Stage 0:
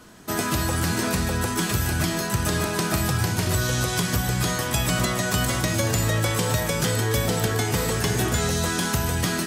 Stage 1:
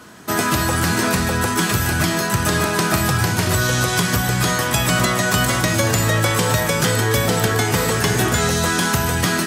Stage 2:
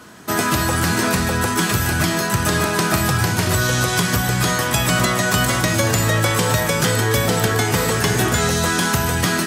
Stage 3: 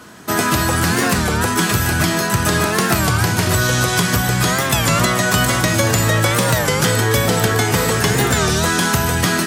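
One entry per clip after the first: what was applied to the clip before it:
high-pass filter 77 Hz; parametric band 1,400 Hz +3.5 dB 1.6 octaves; level +5 dB
no processing that can be heard
wow of a warped record 33 1/3 rpm, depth 160 cents; level +2 dB

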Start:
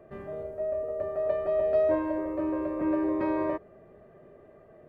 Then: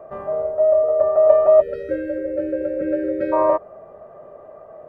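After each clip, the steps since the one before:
time-frequency box erased 0:01.61–0:03.33, 600–1,300 Hz
flat-topped bell 820 Hz +13.5 dB
level +2 dB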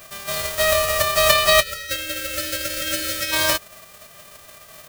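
spectral envelope flattened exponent 0.1
level −3 dB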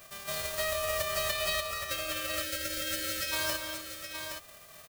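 downward compressor 4 to 1, threshold −20 dBFS, peak gain reduction 9 dB
on a send: multi-tap delay 176/246/819 ms −13.5/−11.5/−7.5 dB
on the sum: level −9 dB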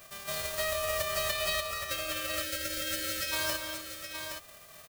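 no processing that can be heard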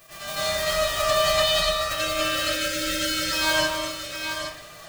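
flanger 0.61 Hz, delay 6 ms, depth 1.2 ms, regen −40%
convolution reverb RT60 0.50 s, pre-delay 81 ms, DRR −11 dB
level +4 dB

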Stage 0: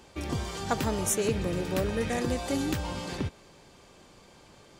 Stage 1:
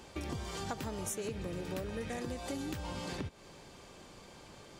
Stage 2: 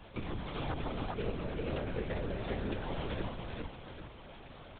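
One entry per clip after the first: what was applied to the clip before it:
downward compressor 5 to 1, threshold −38 dBFS, peak gain reduction 14.5 dB; level +1 dB
repeating echo 401 ms, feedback 37%, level −3 dB; linear-prediction vocoder at 8 kHz whisper; level +1 dB

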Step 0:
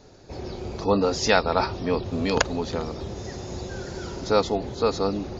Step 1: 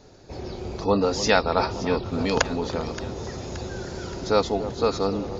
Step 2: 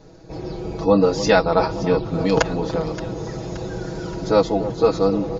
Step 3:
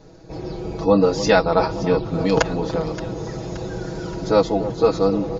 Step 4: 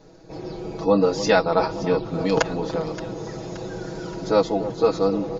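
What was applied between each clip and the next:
delay that swaps between a low-pass and a high-pass 287 ms, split 1,100 Hz, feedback 73%, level −12 dB
tilt shelving filter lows +4 dB, about 1,200 Hz; comb filter 6.2 ms, depth 86%
no processing that can be heard
parametric band 65 Hz −12 dB 1.3 octaves; level −2 dB

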